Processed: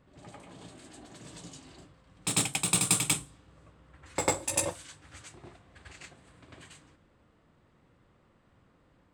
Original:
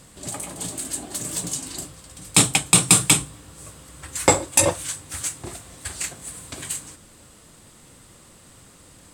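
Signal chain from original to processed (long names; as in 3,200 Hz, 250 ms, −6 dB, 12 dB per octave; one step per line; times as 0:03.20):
low-pass that shuts in the quiet parts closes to 1,900 Hz, open at −16 dBFS
harmonic generator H 3 −17 dB, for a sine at −2 dBFS
backwards echo 97 ms −4.5 dB
level −9 dB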